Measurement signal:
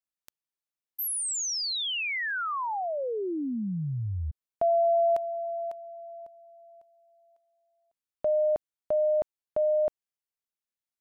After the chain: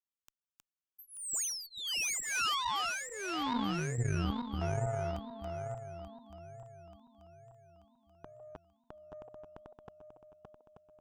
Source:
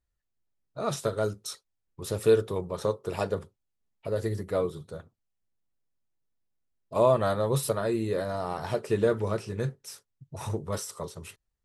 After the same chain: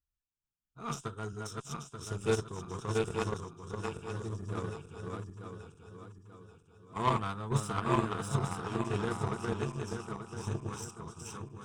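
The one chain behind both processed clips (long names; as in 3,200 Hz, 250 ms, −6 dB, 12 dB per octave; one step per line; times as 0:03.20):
feedback delay that plays each chunk backwards 442 ms, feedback 66%, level −1 dB
phaser with its sweep stopped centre 2,900 Hz, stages 8
harmonic generator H 3 −17 dB, 6 −30 dB, 7 −29 dB, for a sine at −15 dBFS
level +1.5 dB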